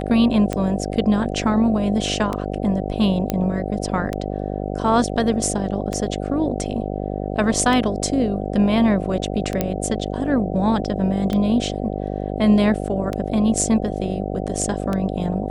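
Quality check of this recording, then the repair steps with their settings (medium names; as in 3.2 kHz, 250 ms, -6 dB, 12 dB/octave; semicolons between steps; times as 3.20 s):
buzz 50 Hz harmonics 15 -26 dBFS
tick 33 1/3 rpm -11 dBFS
3.30 s: pop -7 dBFS
9.61 s: pop -6 dBFS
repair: de-click; de-hum 50 Hz, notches 15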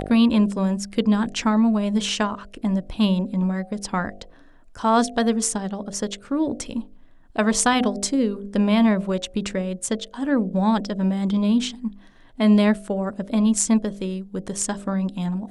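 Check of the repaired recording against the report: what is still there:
nothing left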